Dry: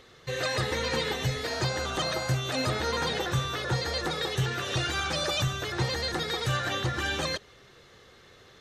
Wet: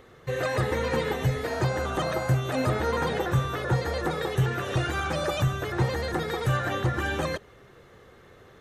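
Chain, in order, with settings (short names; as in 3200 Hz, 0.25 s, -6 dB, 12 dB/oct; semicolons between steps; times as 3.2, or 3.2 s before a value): bell 4600 Hz -14 dB 1.8 oct; gain +4.5 dB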